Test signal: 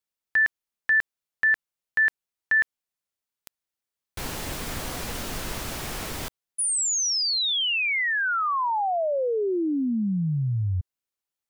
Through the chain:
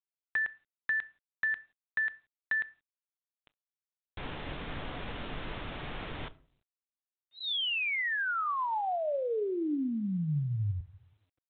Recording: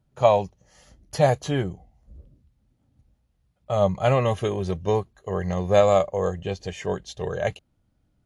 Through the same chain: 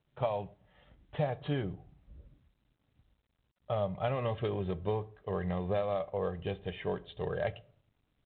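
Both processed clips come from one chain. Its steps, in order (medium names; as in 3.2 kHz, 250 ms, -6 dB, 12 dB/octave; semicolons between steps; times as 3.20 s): compression 16:1, threshold -22 dBFS; simulated room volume 580 m³, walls furnished, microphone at 0.37 m; trim -6 dB; G.726 32 kbps 8 kHz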